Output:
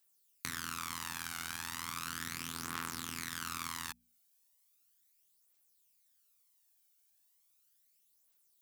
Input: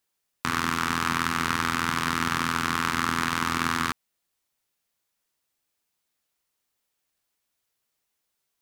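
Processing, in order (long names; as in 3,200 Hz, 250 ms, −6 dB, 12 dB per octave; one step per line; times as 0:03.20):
first-order pre-emphasis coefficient 0.8
mains-hum notches 60/120/180/240 Hz
downward compressor 4 to 1, threshold −41 dBFS, peak gain reduction 11 dB
phase shifter 0.36 Hz, delay 1.4 ms, feedback 51%
level +3.5 dB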